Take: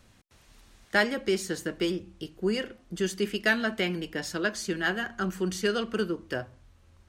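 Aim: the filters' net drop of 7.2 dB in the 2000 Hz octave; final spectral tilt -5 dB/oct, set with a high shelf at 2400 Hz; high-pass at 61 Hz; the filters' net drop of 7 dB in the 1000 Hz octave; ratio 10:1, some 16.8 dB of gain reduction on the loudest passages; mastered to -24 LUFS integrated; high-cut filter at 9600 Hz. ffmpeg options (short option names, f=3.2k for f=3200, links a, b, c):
-af "highpass=61,lowpass=9.6k,equalizer=f=1k:t=o:g=-8,equalizer=f=2k:t=o:g=-3.5,highshelf=f=2.4k:g=-6,acompressor=threshold=-41dB:ratio=10,volume=22dB"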